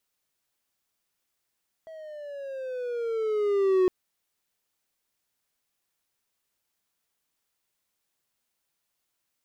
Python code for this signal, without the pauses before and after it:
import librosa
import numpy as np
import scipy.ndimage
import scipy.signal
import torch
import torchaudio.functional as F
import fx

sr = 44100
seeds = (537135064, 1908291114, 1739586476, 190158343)

y = fx.riser_tone(sr, length_s=2.01, level_db=-15.5, wave='triangle', hz=650.0, rise_st=-10.0, swell_db=23)